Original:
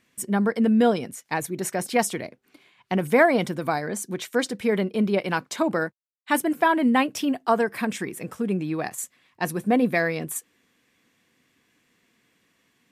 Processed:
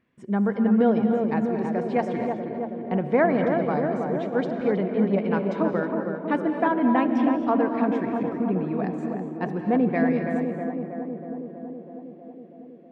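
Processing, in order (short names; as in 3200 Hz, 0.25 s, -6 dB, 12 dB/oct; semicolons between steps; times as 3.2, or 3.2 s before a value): tape spacing loss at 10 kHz 42 dB; tape echo 0.322 s, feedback 85%, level -3 dB, low-pass 1200 Hz; non-linear reverb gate 0.28 s rising, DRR 7.5 dB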